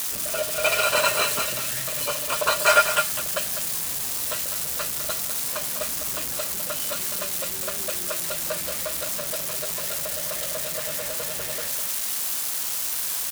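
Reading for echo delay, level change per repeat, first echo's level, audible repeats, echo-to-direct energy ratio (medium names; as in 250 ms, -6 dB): 203 ms, no regular repeats, -9.0 dB, 1, -9.0 dB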